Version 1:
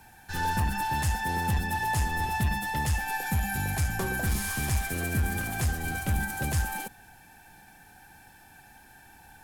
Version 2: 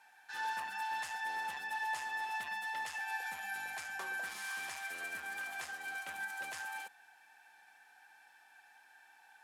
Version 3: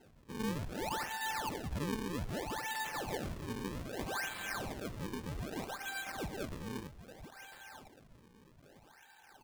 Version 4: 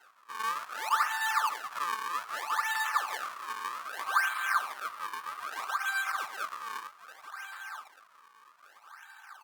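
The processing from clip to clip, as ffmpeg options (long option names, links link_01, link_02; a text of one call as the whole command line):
ffmpeg -i in.wav -af "highpass=1000,aemphasis=mode=reproduction:type=50fm,volume=-4.5dB" out.wav
ffmpeg -i in.wav -af "aecho=1:1:1003|2006:0.266|0.0452,acrusher=samples=37:mix=1:aa=0.000001:lfo=1:lforange=59.2:lforate=0.63,volume=1dB" out.wav
ffmpeg -i in.wav -af "highpass=frequency=1200:width_type=q:width=7.1,volume=4dB" -ar 48000 -c:a libopus -b:a 48k out.opus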